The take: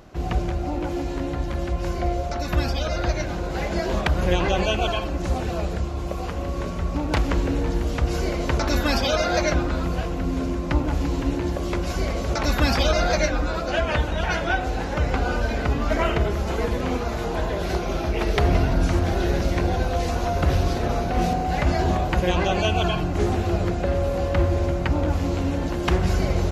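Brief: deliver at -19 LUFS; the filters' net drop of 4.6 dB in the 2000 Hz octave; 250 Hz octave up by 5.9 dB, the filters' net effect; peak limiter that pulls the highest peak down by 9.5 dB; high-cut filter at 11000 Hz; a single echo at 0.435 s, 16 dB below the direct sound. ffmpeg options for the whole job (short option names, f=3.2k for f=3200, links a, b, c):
-af "lowpass=11k,equalizer=f=250:t=o:g=8,equalizer=f=2k:t=o:g=-6.5,alimiter=limit=-15dB:level=0:latency=1,aecho=1:1:435:0.158,volume=5.5dB"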